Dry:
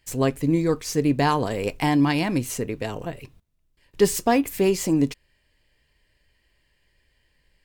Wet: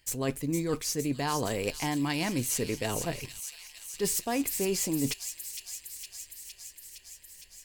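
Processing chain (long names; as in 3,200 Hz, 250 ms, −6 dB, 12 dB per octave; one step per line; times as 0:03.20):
high-shelf EQ 3,500 Hz +9 dB
reversed playback
downward compressor, threshold −27 dBFS, peak gain reduction 14.5 dB
reversed playback
delay with a high-pass on its return 461 ms, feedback 74%, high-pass 3,400 Hz, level −6 dB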